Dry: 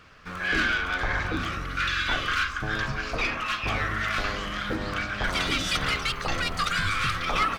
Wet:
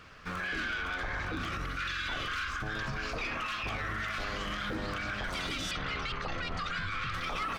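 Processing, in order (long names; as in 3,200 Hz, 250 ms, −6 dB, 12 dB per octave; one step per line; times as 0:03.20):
0:05.71–0:07.14: high-frequency loss of the air 130 metres
brickwall limiter −27 dBFS, peak gain reduction 11 dB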